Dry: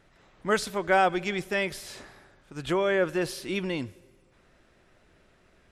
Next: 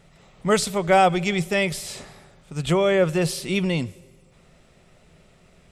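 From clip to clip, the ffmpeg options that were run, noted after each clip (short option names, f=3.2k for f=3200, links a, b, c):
-af "equalizer=f=160:t=o:w=0.33:g=9,equalizer=f=315:t=o:w=0.33:g=-8,equalizer=f=1k:t=o:w=0.33:g=-4,equalizer=f=1.6k:t=o:w=0.33:g=-10,equalizer=f=8k:t=o:w=0.33:g=6,volume=7dB"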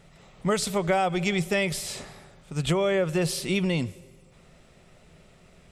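-af "acompressor=threshold=-20dB:ratio=10"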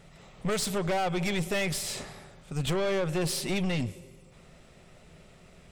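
-af "aeval=exprs='(tanh(22.4*val(0)+0.4)-tanh(0.4))/22.4':c=same,volume=2dB"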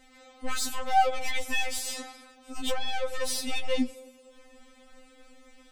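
-af "afftfilt=real='re*3.46*eq(mod(b,12),0)':imag='im*3.46*eq(mod(b,12),0)':win_size=2048:overlap=0.75,volume=3dB"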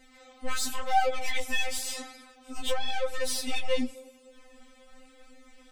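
-af "flanger=delay=4.3:depth=5.3:regen=-34:speed=0.93:shape=sinusoidal,volume=3.5dB"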